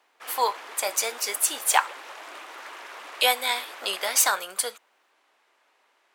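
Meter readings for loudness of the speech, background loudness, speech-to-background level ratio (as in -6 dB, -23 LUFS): -24.5 LUFS, -40.5 LUFS, 16.0 dB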